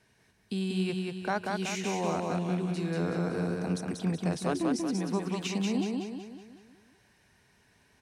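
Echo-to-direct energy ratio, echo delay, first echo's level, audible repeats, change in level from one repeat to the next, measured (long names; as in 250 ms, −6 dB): −2.0 dB, 187 ms, −3.0 dB, 6, −6.5 dB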